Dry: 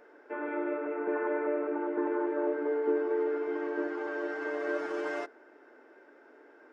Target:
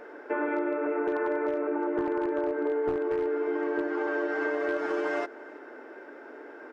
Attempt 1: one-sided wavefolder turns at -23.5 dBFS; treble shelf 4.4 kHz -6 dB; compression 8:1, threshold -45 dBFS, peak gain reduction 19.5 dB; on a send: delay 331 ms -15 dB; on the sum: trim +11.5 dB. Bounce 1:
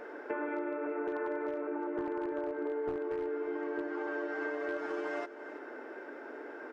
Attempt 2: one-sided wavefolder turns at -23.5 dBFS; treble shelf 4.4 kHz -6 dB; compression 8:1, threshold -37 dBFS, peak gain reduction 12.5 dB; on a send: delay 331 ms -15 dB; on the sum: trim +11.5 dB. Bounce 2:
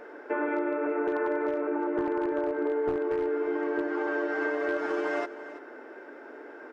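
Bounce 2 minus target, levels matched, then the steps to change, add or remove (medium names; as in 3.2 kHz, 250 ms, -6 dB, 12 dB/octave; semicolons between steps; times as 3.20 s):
echo-to-direct +8.5 dB
change: delay 331 ms -23.5 dB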